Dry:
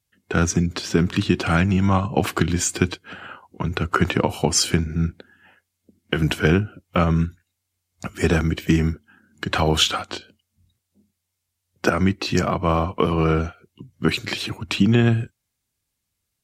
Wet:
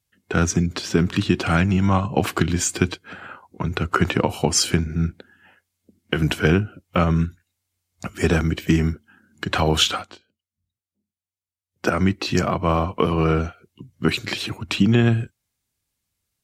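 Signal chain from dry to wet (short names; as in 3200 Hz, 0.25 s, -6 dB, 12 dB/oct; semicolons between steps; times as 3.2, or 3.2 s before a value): 3.02–3.69 notch 2900 Hz, Q 8.4; 9.92–11.94 dip -18 dB, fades 0.25 s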